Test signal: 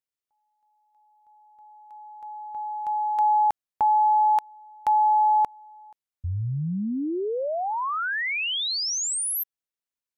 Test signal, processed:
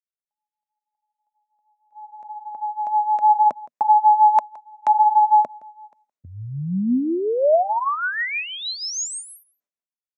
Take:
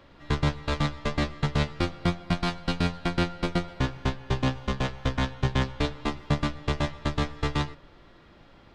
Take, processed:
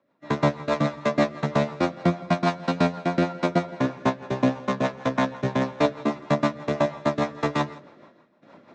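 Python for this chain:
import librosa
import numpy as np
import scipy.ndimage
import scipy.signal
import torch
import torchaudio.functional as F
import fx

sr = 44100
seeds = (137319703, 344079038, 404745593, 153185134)

p1 = fx.gate_hold(x, sr, open_db=-41.0, close_db=-49.0, hold_ms=138.0, range_db=-21, attack_ms=19.0, release_ms=416.0)
p2 = fx.dynamic_eq(p1, sr, hz=670.0, q=4.8, threshold_db=-42.0, ratio=4.0, max_db=5)
p3 = fx.rotary(p2, sr, hz=6.3)
p4 = fx.cabinet(p3, sr, low_hz=140.0, low_slope=24, high_hz=7300.0, hz=(140.0, 240.0, 610.0, 1000.0, 3100.0, 4700.0), db=(-3, 5, 8, 6, -9, -7))
p5 = p4 + fx.echo_single(p4, sr, ms=167, db=-22.0, dry=0)
y = p5 * librosa.db_to_amplitude(5.5)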